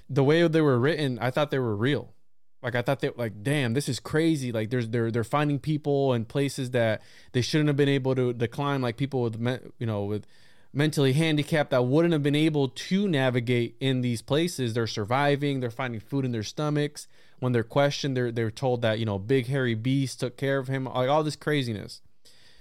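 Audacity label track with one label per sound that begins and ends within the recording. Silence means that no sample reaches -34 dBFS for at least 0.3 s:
2.640000	6.970000	sound
7.340000	10.190000	sound
10.750000	17.020000	sound
17.420000	21.940000	sound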